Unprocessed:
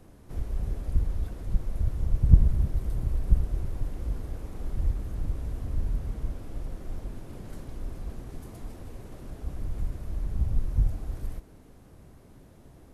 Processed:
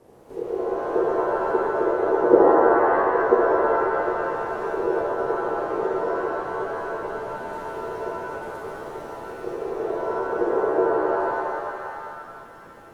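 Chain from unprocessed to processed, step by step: ring modulator 420 Hz; treble ducked by the level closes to 1100 Hz, closed at -21.5 dBFS; shimmer reverb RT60 2.1 s, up +7 st, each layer -2 dB, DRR -2.5 dB

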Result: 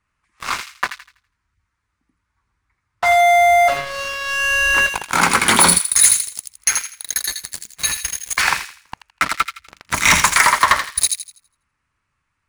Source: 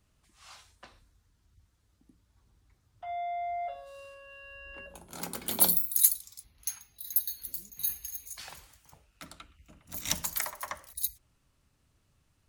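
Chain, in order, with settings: elliptic low-pass 10000 Hz; band shelf 1500 Hz +13.5 dB; sample leveller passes 5; compressor, threshold -13 dBFS, peak gain reduction 4 dB; on a send: thin delay 82 ms, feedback 32%, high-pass 2100 Hz, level -5 dB; on the sum: gain +4 dB

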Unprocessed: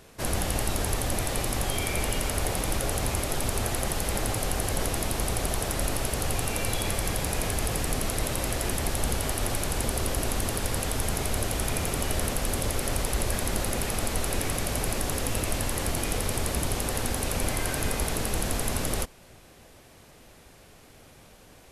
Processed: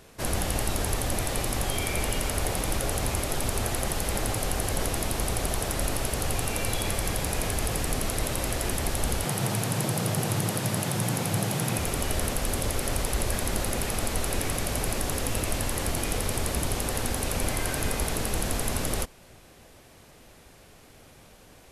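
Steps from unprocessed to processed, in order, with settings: 9.25–11.79 frequency shift +96 Hz

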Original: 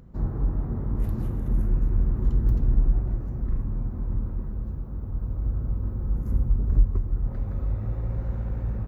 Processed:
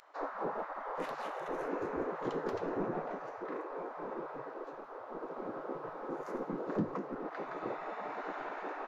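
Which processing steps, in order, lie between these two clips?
air absorption 110 m; spectral gate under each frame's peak -30 dB weak; notches 50/100/150 Hz; gain +12 dB

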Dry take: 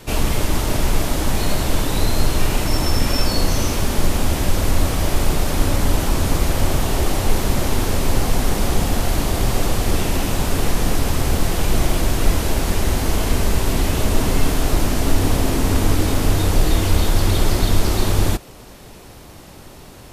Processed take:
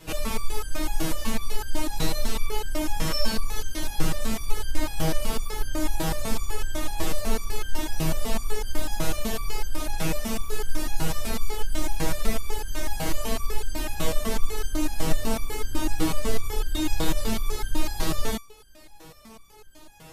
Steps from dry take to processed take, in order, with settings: stepped resonator 8 Hz 160–1600 Hz; gain +7 dB

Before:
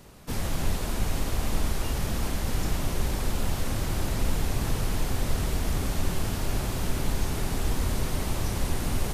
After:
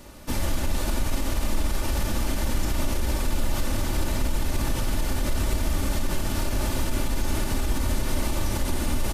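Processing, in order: comb 3.4 ms, depth 51%; limiter -20 dBFS, peak gain reduction 9 dB; flutter echo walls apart 9.4 m, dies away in 0.28 s; gain +4 dB

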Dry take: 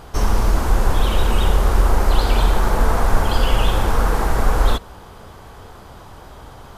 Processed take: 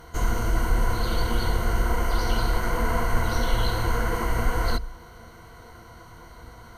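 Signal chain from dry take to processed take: formant shift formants +3 st; ripple EQ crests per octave 1.9, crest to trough 13 dB; gain -8 dB

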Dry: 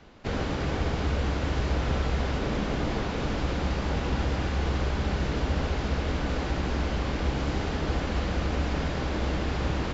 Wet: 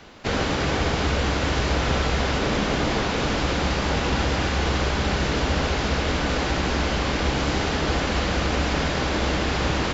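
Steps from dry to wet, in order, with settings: tilt +1.5 dB/oct; gain +8 dB

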